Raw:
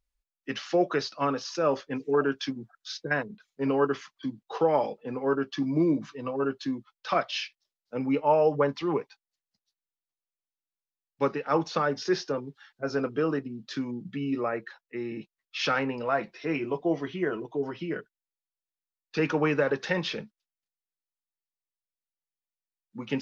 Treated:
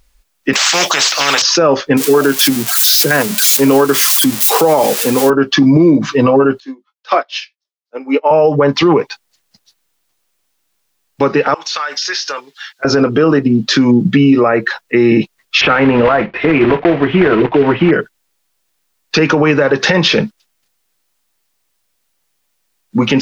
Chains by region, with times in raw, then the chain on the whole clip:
0.53–1.42 HPF 1200 Hz + tilt +2 dB/oct + spectral compressor 4:1
1.97–5.3 switching spikes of -26.5 dBFS + HPF 120 Hz
6.6–8.31 HPF 310 Hz 24 dB/oct + doubler 19 ms -10 dB + upward expander 2.5:1, over -39 dBFS
11.54–12.85 Bessel high-pass 2200 Hz + compressor 10:1, threshold -43 dBFS
15.61–17.93 block floating point 3-bit + LPF 2600 Hz 24 dB/oct
whole clip: compressor 10:1, threshold -31 dBFS; maximiser +29 dB; gain -1 dB

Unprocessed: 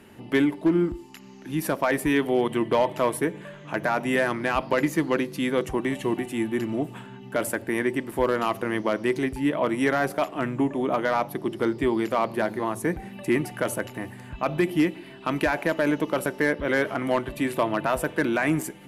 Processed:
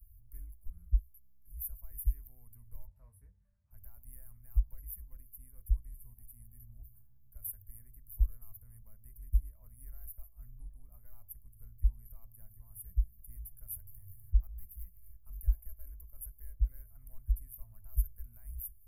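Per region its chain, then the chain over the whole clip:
2.87–3.71 HPF 68 Hz + air absorption 130 m + doubler 22 ms -7 dB
13.76–15.17 self-modulated delay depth 0.053 ms + bell 270 Hz -15 dB 0.45 oct + upward compressor, threshold -28 dBFS
whole clip: inverse Chebyshev band-stop 140–7300 Hz, stop band 50 dB; tone controls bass +15 dB, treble +7 dB; gain +1 dB

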